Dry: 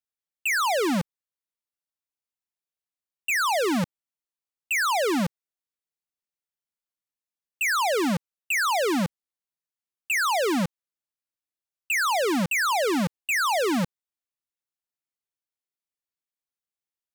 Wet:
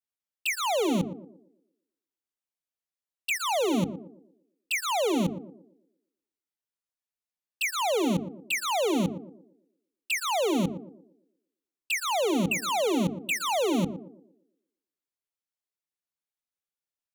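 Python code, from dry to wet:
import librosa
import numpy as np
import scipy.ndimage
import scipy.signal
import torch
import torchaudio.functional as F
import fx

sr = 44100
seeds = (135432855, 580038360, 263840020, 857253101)

y = fx.hum_notches(x, sr, base_hz=50, count=8)
y = fx.env_flanger(y, sr, rest_ms=11.8, full_db=-23.0)
y = fx.echo_banded(y, sr, ms=117, feedback_pct=45, hz=370.0, wet_db=-9.5)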